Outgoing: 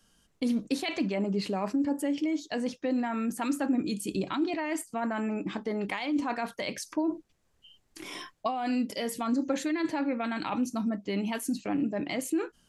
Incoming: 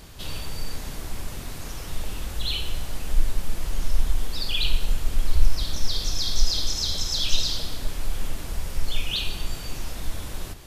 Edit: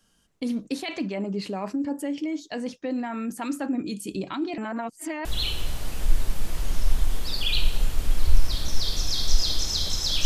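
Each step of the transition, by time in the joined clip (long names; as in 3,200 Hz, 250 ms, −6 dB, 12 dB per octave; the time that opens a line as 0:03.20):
outgoing
0:04.58–0:05.25: reverse
0:05.25: continue with incoming from 0:02.33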